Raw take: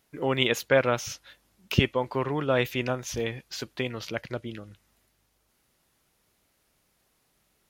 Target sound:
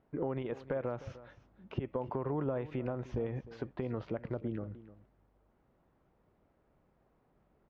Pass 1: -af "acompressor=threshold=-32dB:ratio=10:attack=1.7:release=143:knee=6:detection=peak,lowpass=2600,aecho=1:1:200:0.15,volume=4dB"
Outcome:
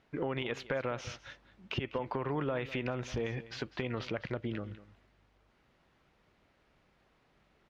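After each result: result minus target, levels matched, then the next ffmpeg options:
2,000 Hz band +10.5 dB; echo 104 ms early
-af "acompressor=threshold=-32dB:ratio=10:attack=1.7:release=143:knee=6:detection=peak,lowpass=920,aecho=1:1:200:0.15,volume=4dB"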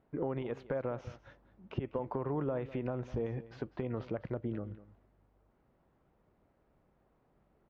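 echo 104 ms early
-af "acompressor=threshold=-32dB:ratio=10:attack=1.7:release=143:knee=6:detection=peak,lowpass=920,aecho=1:1:304:0.15,volume=4dB"

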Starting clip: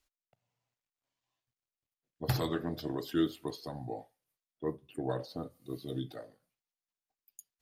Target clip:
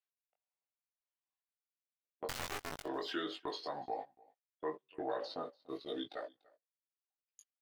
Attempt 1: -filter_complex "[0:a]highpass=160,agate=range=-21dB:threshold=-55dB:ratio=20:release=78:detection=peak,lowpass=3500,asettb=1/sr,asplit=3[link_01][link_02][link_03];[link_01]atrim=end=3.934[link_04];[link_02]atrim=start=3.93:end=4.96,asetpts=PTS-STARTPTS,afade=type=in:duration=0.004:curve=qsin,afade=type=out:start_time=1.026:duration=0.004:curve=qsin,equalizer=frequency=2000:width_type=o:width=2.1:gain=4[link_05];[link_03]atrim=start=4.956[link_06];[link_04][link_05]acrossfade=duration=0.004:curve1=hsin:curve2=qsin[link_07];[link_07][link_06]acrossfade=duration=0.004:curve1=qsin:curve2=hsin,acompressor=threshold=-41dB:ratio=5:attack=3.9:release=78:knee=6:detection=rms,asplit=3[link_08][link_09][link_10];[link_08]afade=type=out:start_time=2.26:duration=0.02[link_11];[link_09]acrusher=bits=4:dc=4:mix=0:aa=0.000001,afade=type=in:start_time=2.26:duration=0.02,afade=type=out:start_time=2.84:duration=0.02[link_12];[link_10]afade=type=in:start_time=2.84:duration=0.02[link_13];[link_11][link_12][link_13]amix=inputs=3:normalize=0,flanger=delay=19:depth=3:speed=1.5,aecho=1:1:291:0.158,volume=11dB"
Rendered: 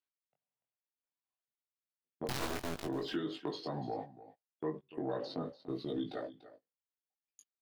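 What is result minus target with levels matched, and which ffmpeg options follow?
125 Hz band +10.0 dB; echo-to-direct +9 dB
-filter_complex "[0:a]highpass=600,agate=range=-21dB:threshold=-55dB:ratio=20:release=78:detection=peak,lowpass=3500,asettb=1/sr,asplit=3[link_01][link_02][link_03];[link_01]atrim=end=3.934[link_04];[link_02]atrim=start=3.93:end=4.96,asetpts=PTS-STARTPTS,afade=type=in:duration=0.004:curve=qsin,afade=type=out:start_time=1.026:duration=0.004:curve=qsin,equalizer=frequency=2000:width_type=o:width=2.1:gain=4[link_05];[link_03]atrim=start=4.956[link_06];[link_04][link_05]acrossfade=duration=0.004:curve1=hsin:curve2=qsin[link_07];[link_07][link_06]acrossfade=duration=0.004:curve1=qsin:curve2=hsin,acompressor=threshold=-41dB:ratio=5:attack=3.9:release=78:knee=6:detection=rms,asplit=3[link_08][link_09][link_10];[link_08]afade=type=out:start_time=2.26:duration=0.02[link_11];[link_09]acrusher=bits=4:dc=4:mix=0:aa=0.000001,afade=type=in:start_time=2.26:duration=0.02,afade=type=out:start_time=2.84:duration=0.02[link_12];[link_10]afade=type=in:start_time=2.84:duration=0.02[link_13];[link_11][link_12][link_13]amix=inputs=3:normalize=0,flanger=delay=19:depth=3:speed=1.5,aecho=1:1:291:0.0562,volume=11dB"

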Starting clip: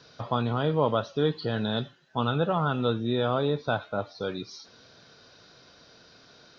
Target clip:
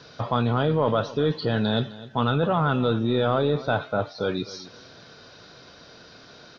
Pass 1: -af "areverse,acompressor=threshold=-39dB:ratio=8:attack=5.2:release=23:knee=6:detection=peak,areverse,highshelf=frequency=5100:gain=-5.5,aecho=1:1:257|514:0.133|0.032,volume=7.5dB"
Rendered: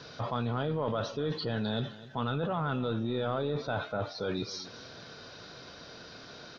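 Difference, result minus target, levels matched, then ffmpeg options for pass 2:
downward compressor: peak gain reduction +10 dB
-af "areverse,acompressor=threshold=-27.5dB:ratio=8:attack=5.2:release=23:knee=6:detection=peak,areverse,highshelf=frequency=5100:gain=-5.5,aecho=1:1:257|514:0.133|0.032,volume=7.5dB"

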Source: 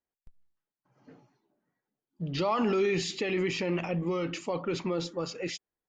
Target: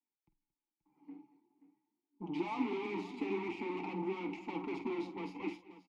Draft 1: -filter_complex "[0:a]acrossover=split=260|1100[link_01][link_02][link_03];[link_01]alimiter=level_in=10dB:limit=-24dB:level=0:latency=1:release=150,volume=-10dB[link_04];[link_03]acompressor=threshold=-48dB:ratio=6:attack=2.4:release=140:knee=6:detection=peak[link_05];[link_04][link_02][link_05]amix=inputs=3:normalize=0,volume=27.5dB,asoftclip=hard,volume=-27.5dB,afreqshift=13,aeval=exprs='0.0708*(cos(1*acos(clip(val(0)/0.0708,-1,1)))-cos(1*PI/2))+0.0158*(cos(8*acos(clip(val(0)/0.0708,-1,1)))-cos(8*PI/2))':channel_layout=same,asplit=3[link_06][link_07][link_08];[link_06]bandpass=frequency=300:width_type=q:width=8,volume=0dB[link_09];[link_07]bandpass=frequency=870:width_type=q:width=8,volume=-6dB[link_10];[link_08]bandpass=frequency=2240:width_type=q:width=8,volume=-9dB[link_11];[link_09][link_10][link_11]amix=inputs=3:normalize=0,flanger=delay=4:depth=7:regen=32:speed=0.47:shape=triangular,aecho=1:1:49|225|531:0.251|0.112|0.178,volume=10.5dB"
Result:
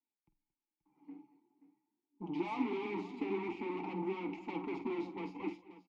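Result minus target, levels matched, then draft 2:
downward compressor: peak gain reduction +6 dB
-filter_complex "[0:a]acrossover=split=260|1100[link_01][link_02][link_03];[link_01]alimiter=level_in=10dB:limit=-24dB:level=0:latency=1:release=150,volume=-10dB[link_04];[link_03]acompressor=threshold=-41dB:ratio=6:attack=2.4:release=140:knee=6:detection=peak[link_05];[link_04][link_02][link_05]amix=inputs=3:normalize=0,volume=27.5dB,asoftclip=hard,volume=-27.5dB,afreqshift=13,aeval=exprs='0.0708*(cos(1*acos(clip(val(0)/0.0708,-1,1)))-cos(1*PI/2))+0.0158*(cos(8*acos(clip(val(0)/0.0708,-1,1)))-cos(8*PI/2))':channel_layout=same,asplit=3[link_06][link_07][link_08];[link_06]bandpass=frequency=300:width_type=q:width=8,volume=0dB[link_09];[link_07]bandpass=frequency=870:width_type=q:width=8,volume=-6dB[link_10];[link_08]bandpass=frequency=2240:width_type=q:width=8,volume=-9dB[link_11];[link_09][link_10][link_11]amix=inputs=3:normalize=0,flanger=delay=4:depth=7:regen=32:speed=0.47:shape=triangular,aecho=1:1:49|225|531:0.251|0.112|0.178,volume=10.5dB"

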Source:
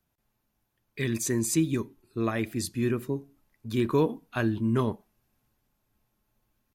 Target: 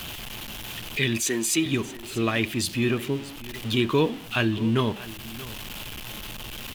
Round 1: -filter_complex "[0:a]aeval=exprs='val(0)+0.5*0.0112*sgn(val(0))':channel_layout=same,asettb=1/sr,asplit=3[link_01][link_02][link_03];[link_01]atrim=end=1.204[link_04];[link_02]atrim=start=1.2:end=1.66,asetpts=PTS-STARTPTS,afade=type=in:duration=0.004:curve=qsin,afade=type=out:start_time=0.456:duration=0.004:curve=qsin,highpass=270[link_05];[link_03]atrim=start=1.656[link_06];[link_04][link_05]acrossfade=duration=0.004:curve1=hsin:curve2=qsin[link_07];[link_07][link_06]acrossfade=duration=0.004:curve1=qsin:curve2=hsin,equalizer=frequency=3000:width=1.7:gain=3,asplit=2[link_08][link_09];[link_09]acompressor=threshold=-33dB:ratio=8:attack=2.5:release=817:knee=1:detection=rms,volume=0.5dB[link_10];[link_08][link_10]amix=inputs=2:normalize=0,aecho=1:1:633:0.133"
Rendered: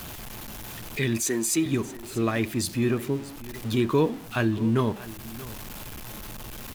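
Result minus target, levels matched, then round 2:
4,000 Hz band −7.5 dB
-filter_complex "[0:a]aeval=exprs='val(0)+0.5*0.0112*sgn(val(0))':channel_layout=same,asettb=1/sr,asplit=3[link_01][link_02][link_03];[link_01]atrim=end=1.204[link_04];[link_02]atrim=start=1.2:end=1.66,asetpts=PTS-STARTPTS,afade=type=in:duration=0.004:curve=qsin,afade=type=out:start_time=0.456:duration=0.004:curve=qsin,highpass=270[link_05];[link_03]atrim=start=1.656[link_06];[link_04][link_05]acrossfade=duration=0.004:curve1=hsin:curve2=qsin[link_07];[link_07][link_06]acrossfade=duration=0.004:curve1=qsin:curve2=hsin,equalizer=frequency=3000:width=1.7:gain=14.5,asplit=2[link_08][link_09];[link_09]acompressor=threshold=-33dB:ratio=8:attack=2.5:release=817:knee=1:detection=rms,volume=0.5dB[link_10];[link_08][link_10]amix=inputs=2:normalize=0,aecho=1:1:633:0.133"

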